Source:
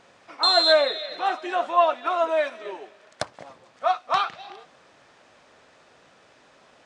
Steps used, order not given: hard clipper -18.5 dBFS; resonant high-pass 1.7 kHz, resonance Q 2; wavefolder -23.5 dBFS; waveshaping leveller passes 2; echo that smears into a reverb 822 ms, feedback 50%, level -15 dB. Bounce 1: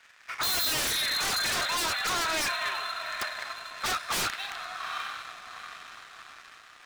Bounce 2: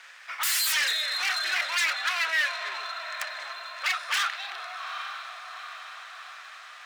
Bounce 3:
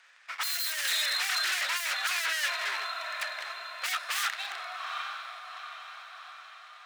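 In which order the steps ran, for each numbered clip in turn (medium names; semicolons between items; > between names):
echo that smears into a reverb > hard clipper > resonant high-pass > waveshaping leveller > wavefolder; echo that smears into a reverb > wavefolder > waveshaping leveller > resonant high-pass > hard clipper; waveshaping leveller > echo that smears into a reverb > hard clipper > wavefolder > resonant high-pass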